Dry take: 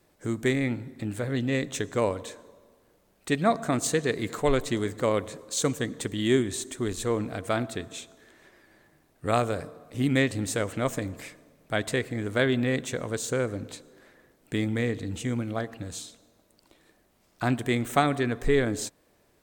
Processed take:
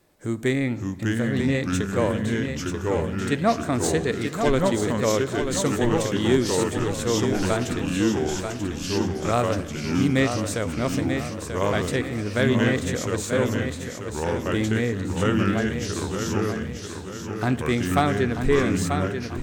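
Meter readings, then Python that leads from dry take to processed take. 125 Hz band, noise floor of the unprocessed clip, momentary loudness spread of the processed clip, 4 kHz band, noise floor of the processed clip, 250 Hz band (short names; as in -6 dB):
+6.5 dB, -65 dBFS, 7 LU, +4.5 dB, -34 dBFS, +6.0 dB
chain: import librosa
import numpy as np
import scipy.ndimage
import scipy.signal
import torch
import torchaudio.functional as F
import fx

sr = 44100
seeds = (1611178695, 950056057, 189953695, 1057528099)

p1 = fx.echo_pitch(x, sr, ms=514, semitones=-3, count=2, db_per_echo=-3.0)
p2 = fx.hpss(p1, sr, part='harmonic', gain_db=3)
p3 = p2 + fx.echo_feedback(p2, sr, ms=937, feedback_pct=42, wet_db=-7.0, dry=0)
y = np.clip(10.0 ** (10.0 / 20.0) * p3, -1.0, 1.0) / 10.0 ** (10.0 / 20.0)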